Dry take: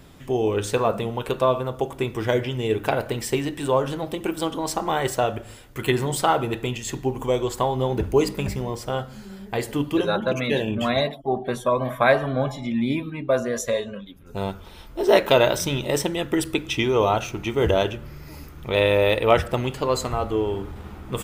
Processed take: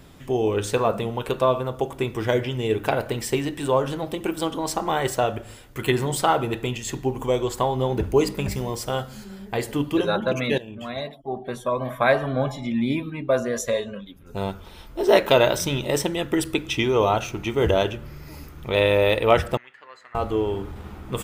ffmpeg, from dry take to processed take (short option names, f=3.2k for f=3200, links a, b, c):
-filter_complex "[0:a]asettb=1/sr,asplit=3[a][b][c];[a]atrim=end=8.514[d];[b]atrim=start=8.51:end=9.24,asetpts=PTS-STARTPTS,afade=t=in:d=0.004:c=qsin,afade=t=out:st=0.726:d=0.004:c=qsin,highshelf=f=3.9k:g=8[e];[c]atrim=start=9.236[f];[d][e]acrossfade=d=0.004:c1=hsin:c2=qsin[g];[g][f]acrossfade=d=0.004:c1=qsin:c2=hsin,asettb=1/sr,asplit=3[h][i][j];[h]atrim=end=19.574[k];[i]atrim=start=19.57:end=20.15,asetpts=PTS-STARTPTS,afade=t=in:d=0.004:c=qsin,afade=t=out:st=0.576:d=0.004:c=qsin,bandpass=f=1.8k:t=q:w=7.4[l];[j]atrim=start=20.146[m];[k][l]acrossfade=d=0.004:c1=hsin:c2=qsin[n];[n][m]acrossfade=d=0.004:c1=qsin:c2=hsin,asplit=2[o][p];[o]atrim=end=10.58,asetpts=PTS-STARTPTS,afade=t=out:st=10.576:d=0.004:c=hsin:silence=0.177828[q];[p]atrim=start=10.58,asetpts=PTS-STARTPTS,afade=t=in:d=1.83:silence=0.177828[r];[q][r]concat=n=2:v=0:a=1"